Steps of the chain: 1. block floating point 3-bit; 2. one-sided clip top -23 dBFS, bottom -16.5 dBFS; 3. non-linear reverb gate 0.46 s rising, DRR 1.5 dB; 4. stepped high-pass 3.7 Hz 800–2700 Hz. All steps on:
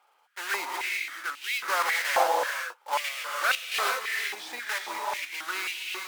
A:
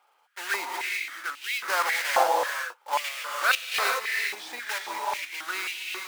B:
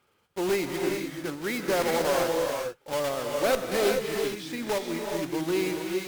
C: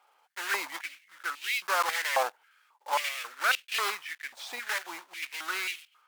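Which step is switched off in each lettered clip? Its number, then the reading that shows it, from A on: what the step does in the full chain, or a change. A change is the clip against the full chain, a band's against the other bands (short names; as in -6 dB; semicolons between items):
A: 2, distortion -12 dB; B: 4, 250 Hz band +25.0 dB; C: 3, momentary loudness spread change +4 LU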